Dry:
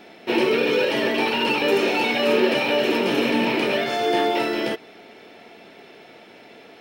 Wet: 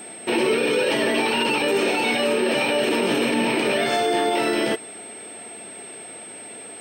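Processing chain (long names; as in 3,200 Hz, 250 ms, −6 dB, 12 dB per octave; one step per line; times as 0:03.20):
brickwall limiter −16 dBFS, peak gain reduction 9 dB
steady tone 8,300 Hz −41 dBFS
level +3.5 dB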